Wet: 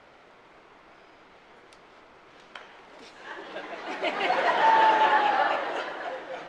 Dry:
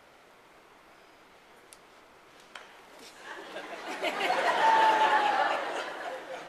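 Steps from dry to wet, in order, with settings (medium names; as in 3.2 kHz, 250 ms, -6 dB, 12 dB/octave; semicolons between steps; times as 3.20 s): distance through air 110 m; trim +3.5 dB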